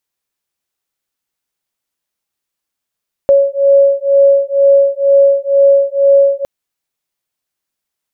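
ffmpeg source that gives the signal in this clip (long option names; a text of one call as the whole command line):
ffmpeg -f lavfi -i "aevalsrc='0.335*(sin(2*PI*555*t)+sin(2*PI*557.1*t))':duration=3.16:sample_rate=44100" out.wav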